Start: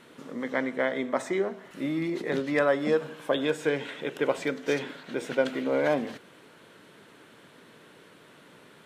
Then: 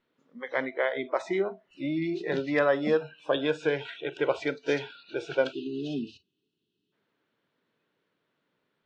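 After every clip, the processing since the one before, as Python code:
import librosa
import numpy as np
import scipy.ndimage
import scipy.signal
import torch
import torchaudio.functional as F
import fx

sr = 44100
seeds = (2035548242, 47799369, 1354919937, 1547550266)

y = fx.spec_box(x, sr, start_s=5.52, length_s=1.41, low_hz=450.0, high_hz=2500.0, gain_db=-21)
y = fx.noise_reduce_blind(y, sr, reduce_db=24)
y = scipy.signal.sosfilt(scipy.signal.butter(4, 5600.0, 'lowpass', fs=sr, output='sos'), y)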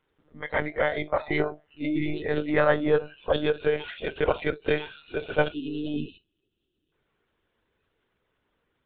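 y = fx.lpc_monotone(x, sr, seeds[0], pitch_hz=150.0, order=16)
y = y * 10.0 ** (2.5 / 20.0)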